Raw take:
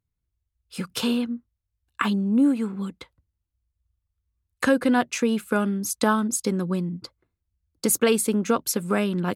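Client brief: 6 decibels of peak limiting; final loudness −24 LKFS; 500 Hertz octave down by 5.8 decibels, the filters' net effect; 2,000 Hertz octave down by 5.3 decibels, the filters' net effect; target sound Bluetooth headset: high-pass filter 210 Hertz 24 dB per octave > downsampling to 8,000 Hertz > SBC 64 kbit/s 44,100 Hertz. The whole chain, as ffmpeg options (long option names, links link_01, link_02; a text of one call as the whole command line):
ffmpeg -i in.wav -af "equalizer=frequency=500:width_type=o:gain=-6.5,equalizer=frequency=2000:width_type=o:gain=-7,alimiter=limit=-16.5dB:level=0:latency=1,highpass=frequency=210:width=0.5412,highpass=frequency=210:width=1.3066,aresample=8000,aresample=44100,volume=5.5dB" -ar 44100 -c:a sbc -b:a 64k out.sbc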